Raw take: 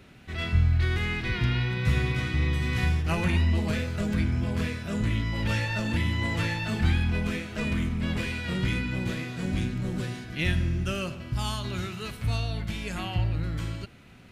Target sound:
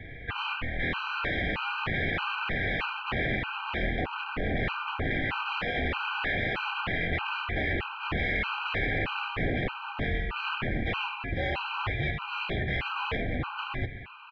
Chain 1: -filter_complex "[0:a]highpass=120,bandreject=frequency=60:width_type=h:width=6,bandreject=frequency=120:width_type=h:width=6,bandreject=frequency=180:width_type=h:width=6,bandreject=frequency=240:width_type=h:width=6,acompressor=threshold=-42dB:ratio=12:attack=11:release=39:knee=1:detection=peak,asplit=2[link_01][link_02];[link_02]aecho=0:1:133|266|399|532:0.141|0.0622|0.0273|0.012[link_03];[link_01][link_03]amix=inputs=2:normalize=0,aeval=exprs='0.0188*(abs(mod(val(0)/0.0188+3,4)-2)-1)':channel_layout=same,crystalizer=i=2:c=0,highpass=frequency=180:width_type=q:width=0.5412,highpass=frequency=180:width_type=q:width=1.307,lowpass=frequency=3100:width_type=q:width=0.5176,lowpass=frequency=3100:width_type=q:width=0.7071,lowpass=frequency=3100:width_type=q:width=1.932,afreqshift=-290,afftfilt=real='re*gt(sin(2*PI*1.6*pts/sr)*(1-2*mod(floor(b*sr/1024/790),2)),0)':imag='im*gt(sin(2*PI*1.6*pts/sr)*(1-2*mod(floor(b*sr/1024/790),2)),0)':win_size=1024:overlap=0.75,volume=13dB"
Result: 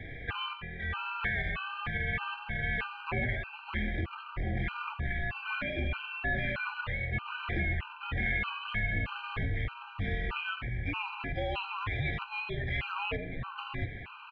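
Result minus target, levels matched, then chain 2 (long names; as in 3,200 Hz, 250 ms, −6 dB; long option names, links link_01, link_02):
downward compressor: peak gain reduction +9.5 dB
-filter_complex "[0:a]highpass=120,bandreject=frequency=60:width_type=h:width=6,bandreject=frequency=120:width_type=h:width=6,bandreject=frequency=180:width_type=h:width=6,bandreject=frequency=240:width_type=h:width=6,acompressor=threshold=-31.5dB:ratio=12:attack=11:release=39:knee=1:detection=peak,asplit=2[link_01][link_02];[link_02]aecho=0:1:133|266|399|532:0.141|0.0622|0.0273|0.012[link_03];[link_01][link_03]amix=inputs=2:normalize=0,aeval=exprs='0.0188*(abs(mod(val(0)/0.0188+3,4)-2)-1)':channel_layout=same,crystalizer=i=2:c=0,highpass=frequency=180:width_type=q:width=0.5412,highpass=frequency=180:width_type=q:width=1.307,lowpass=frequency=3100:width_type=q:width=0.5176,lowpass=frequency=3100:width_type=q:width=0.7071,lowpass=frequency=3100:width_type=q:width=1.932,afreqshift=-290,afftfilt=real='re*gt(sin(2*PI*1.6*pts/sr)*(1-2*mod(floor(b*sr/1024/790),2)),0)':imag='im*gt(sin(2*PI*1.6*pts/sr)*(1-2*mod(floor(b*sr/1024/790),2)),0)':win_size=1024:overlap=0.75,volume=13dB"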